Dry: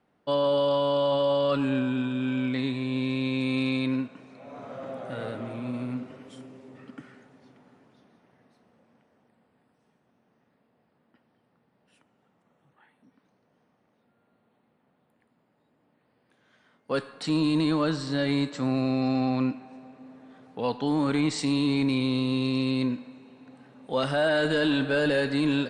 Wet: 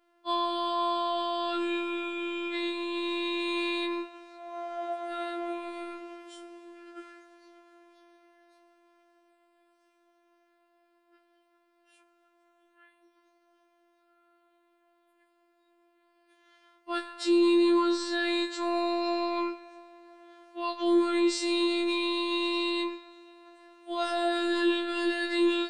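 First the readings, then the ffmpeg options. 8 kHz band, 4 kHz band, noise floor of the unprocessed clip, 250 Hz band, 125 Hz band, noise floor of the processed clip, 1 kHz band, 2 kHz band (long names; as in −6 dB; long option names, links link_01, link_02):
+0.5 dB, +1.0 dB, −70 dBFS, −3.0 dB, below −35 dB, −69 dBFS, +2.5 dB, −1.5 dB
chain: -af "afftfilt=real='hypot(re,im)*cos(PI*b)':imag='0':win_size=1024:overlap=0.75,alimiter=limit=-20.5dB:level=0:latency=1:release=45,afftfilt=real='re*4*eq(mod(b,16),0)':imag='im*4*eq(mod(b,16),0)':win_size=2048:overlap=0.75"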